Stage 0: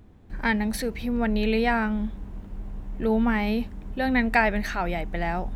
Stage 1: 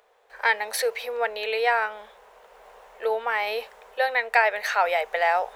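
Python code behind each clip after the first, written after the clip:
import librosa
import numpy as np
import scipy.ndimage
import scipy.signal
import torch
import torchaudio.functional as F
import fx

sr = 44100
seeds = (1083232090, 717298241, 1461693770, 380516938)

y = fx.rider(x, sr, range_db=4, speed_s=0.5)
y = scipy.signal.sosfilt(scipy.signal.ellip(4, 1.0, 40, 470.0, 'highpass', fs=sr, output='sos'), y)
y = y * 10.0 ** (5.0 / 20.0)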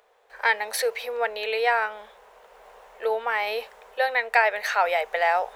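y = x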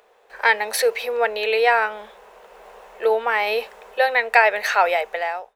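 y = fx.fade_out_tail(x, sr, length_s=0.76)
y = fx.small_body(y, sr, hz=(210.0, 350.0, 2600.0), ring_ms=30, db=6)
y = y * 10.0 ** (4.5 / 20.0)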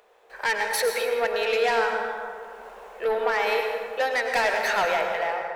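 y = 10.0 ** (-16.5 / 20.0) * np.tanh(x / 10.0 ** (-16.5 / 20.0))
y = fx.rev_plate(y, sr, seeds[0], rt60_s=2.1, hf_ratio=0.4, predelay_ms=85, drr_db=2.5)
y = y * 10.0 ** (-2.5 / 20.0)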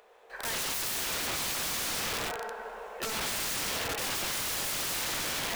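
y = fx.echo_feedback(x, sr, ms=153, feedback_pct=58, wet_db=-12.0)
y = (np.mod(10.0 ** (28.0 / 20.0) * y + 1.0, 2.0) - 1.0) / 10.0 ** (28.0 / 20.0)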